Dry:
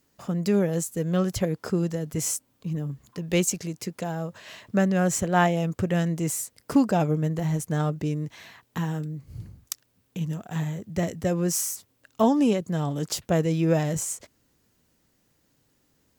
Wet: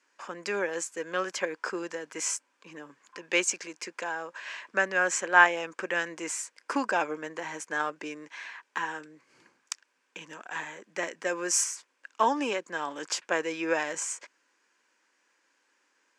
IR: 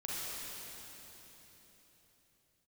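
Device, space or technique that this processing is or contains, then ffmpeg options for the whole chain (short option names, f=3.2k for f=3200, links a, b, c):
phone speaker on a table: -filter_complex "[0:a]highpass=f=380:w=0.5412,highpass=f=380:w=1.3066,equalizer=f=430:t=q:w=4:g=-6,equalizer=f=670:t=q:w=4:g=-8,equalizer=f=990:t=q:w=4:g=7,equalizer=f=1.6k:t=q:w=4:g=10,equalizer=f=2.4k:t=q:w=4:g=7,equalizer=f=3.9k:t=q:w=4:g=-4,lowpass=f=7.7k:w=0.5412,lowpass=f=7.7k:w=1.3066,asettb=1/sr,asplit=3[a][b][c];[a]atrim=end=11.094[d];[b]atrim=start=11.09:end=11.64,asetpts=PTS-STARTPTS,afade=t=in:d=0.004:c=qsin,afade=t=out:st=0.546:d=0.004:c=qsin,adynamicequalizer=threshold=0.00631:dfrequency=6000:dqfactor=0.7:tfrequency=6000:tqfactor=0.7:attack=5:release=100:ratio=0.375:range=4:mode=boostabove:tftype=highshelf[e];[c]atrim=start=11.636[f];[d][e]acrossfade=d=0.004:c1=hsin:c2=qsin[g];[g][f]acrossfade=d=0.004:c1=qsin:c2=hsin"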